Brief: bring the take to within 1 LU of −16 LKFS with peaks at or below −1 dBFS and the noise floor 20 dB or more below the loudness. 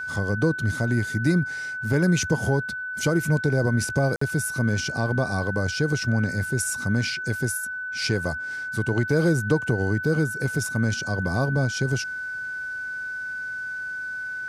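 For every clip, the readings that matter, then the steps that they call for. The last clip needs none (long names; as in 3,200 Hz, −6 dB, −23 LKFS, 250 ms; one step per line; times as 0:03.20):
number of dropouts 1; longest dropout 54 ms; interfering tone 1,500 Hz; level of the tone −29 dBFS; integrated loudness −25.0 LKFS; sample peak −9.0 dBFS; target loudness −16.0 LKFS
→ repair the gap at 0:04.16, 54 ms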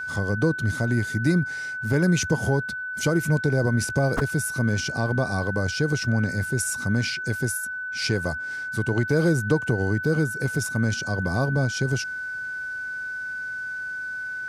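number of dropouts 0; interfering tone 1,500 Hz; level of the tone −29 dBFS
→ notch filter 1,500 Hz, Q 30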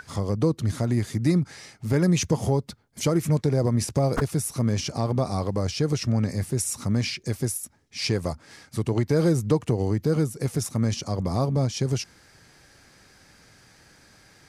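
interfering tone none found; integrated loudness −25.5 LKFS; sample peak −9.5 dBFS; target loudness −16.0 LKFS
→ level +9.5 dB
brickwall limiter −1 dBFS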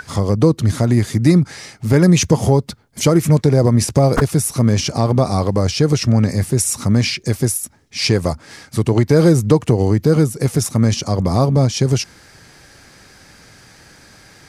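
integrated loudness −16.0 LKFS; sample peak −1.0 dBFS; background noise floor −46 dBFS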